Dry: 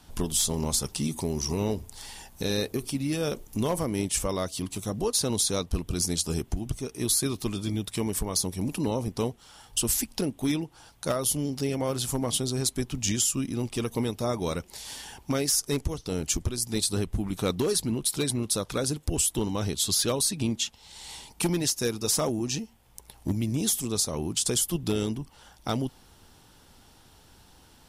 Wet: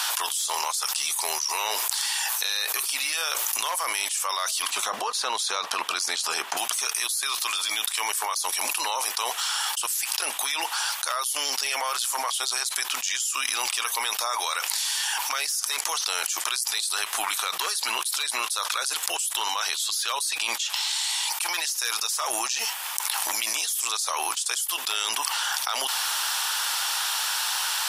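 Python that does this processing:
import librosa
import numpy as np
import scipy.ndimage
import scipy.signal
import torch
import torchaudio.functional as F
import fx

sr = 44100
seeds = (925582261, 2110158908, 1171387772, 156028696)

y = fx.riaa(x, sr, side='playback', at=(4.7, 6.57))
y = scipy.signal.sosfilt(scipy.signal.butter(4, 1000.0, 'highpass', fs=sr, output='sos'), y)
y = fx.notch(y, sr, hz=2100.0, q=22.0)
y = fx.env_flatten(y, sr, amount_pct=100)
y = y * librosa.db_to_amplitude(-4.5)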